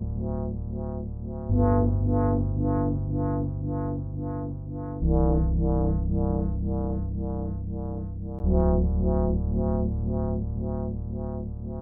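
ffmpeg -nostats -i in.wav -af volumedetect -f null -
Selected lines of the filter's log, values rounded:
mean_volume: -25.5 dB
max_volume: -11.5 dB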